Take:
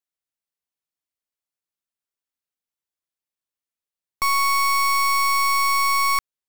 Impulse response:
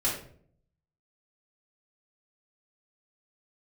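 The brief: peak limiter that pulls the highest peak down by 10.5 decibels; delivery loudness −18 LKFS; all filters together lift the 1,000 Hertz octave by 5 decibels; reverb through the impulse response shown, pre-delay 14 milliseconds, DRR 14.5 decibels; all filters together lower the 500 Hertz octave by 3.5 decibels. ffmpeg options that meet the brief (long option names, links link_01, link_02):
-filter_complex "[0:a]equalizer=frequency=500:width_type=o:gain=-6.5,equalizer=frequency=1000:width_type=o:gain=6.5,alimiter=limit=-24dB:level=0:latency=1,asplit=2[link_01][link_02];[1:a]atrim=start_sample=2205,adelay=14[link_03];[link_02][link_03]afir=irnorm=-1:irlink=0,volume=-23dB[link_04];[link_01][link_04]amix=inputs=2:normalize=0,volume=8dB"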